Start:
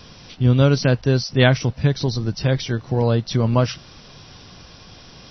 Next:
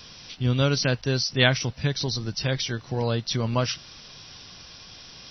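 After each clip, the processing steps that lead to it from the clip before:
tilt shelving filter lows −5.5 dB, about 1,500 Hz
level −2.5 dB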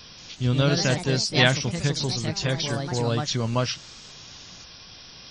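delay with pitch and tempo change per echo 181 ms, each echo +3 semitones, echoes 3, each echo −6 dB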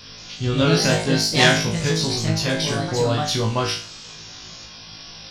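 phase distortion by the signal itself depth 0.05 ms
flutter between parallel walls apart 3.2 metres, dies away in 0.41 s
level +2 dB

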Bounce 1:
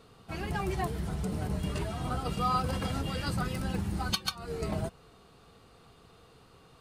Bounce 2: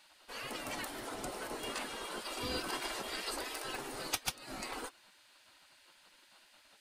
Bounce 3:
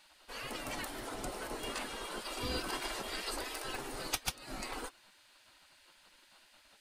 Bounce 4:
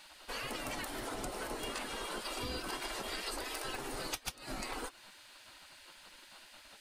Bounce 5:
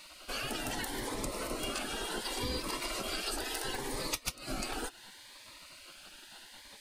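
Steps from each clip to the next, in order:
gate on every frequency bin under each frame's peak −15 dB weak; level +3 dB
low-shelf EQ 70 Hz +10.5 dB
downward compressor 4 to 1, threshold −45 dBFS, peak gain reduction 13.5 dB; level +7 dB
phaser whose notches keep moving one way rising 0.71 Hz; level +5 dB

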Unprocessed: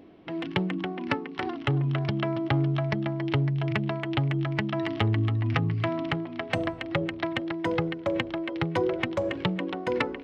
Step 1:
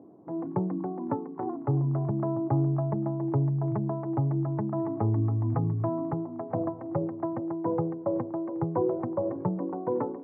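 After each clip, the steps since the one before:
elliptic band-pass filter 110–980 Hz, stop band 50 dB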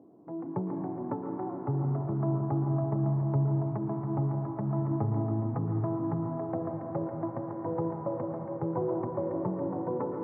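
convolution reverb RT60 4.3 s, pre-delay 105 ms, DRR 1.5 dB
level −4.5 dB

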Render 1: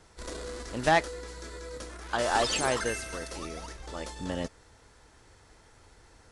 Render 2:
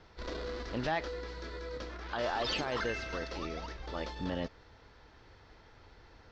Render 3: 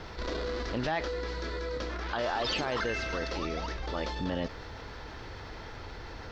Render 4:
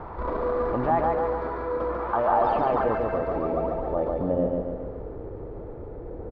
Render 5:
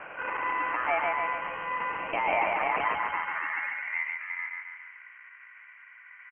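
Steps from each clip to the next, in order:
inverse Chebyshev low-pass filter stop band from 8,800 Hz, stop band 40 dB; brickwall limiter −24.5 dBFS, peak gain reduction 11.5 dB
envelope flattener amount 50%; level +1 dB
hollow resonant body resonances 1,200/2,300 Hz, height 8 dB; low-pass filter sweep 950 Hz → 470 Hz, 0:02.28–0:05.18; repeating echo 142 ms, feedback 52%, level −3 dB; level +3.5 dB
ring modulation 1,600 Hz; low-pass filter sweep 2,200 Hz → 840 Hz, 0:03.03–0:04.27; voice inversion scrambler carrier 3,100 Hz; level −6.5 dB

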